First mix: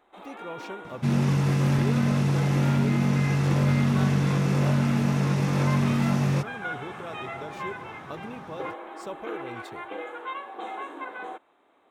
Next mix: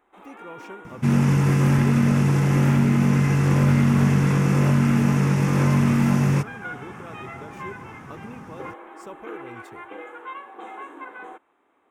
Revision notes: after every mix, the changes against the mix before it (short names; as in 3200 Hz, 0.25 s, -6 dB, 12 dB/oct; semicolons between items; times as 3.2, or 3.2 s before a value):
second sound +6.5 dB; master: add fifteen-band EQ 160 Hz -3 dB, 630 Hz -6 dB, 4000 Hz -11 dB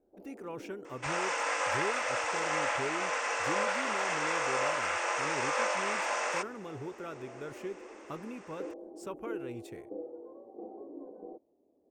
first sound: add elliptic low-pass 610 Hz, stop band 80 dB; second sound: add brick-wall FIR band-pass 470–9000 Hz